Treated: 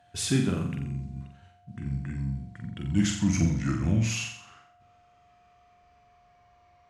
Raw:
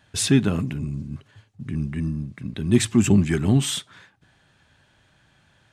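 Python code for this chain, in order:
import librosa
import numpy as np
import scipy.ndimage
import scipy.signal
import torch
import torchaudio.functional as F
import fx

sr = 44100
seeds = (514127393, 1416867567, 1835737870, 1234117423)

y = fx.speed_glide(x, sr, from_pct=99, to_pct=67)
y = fx.room_flutter(y, sr, wall_m=7.5, rt60_s=0.6)
y = y + 10.0 ** (-51.0 / 20.0) * np.sin(2.0 * np.pi * 710.0 * np.arange(len(y)) / sr)
y = F.gain(torch.from_numpy(y), -8.0).numpy()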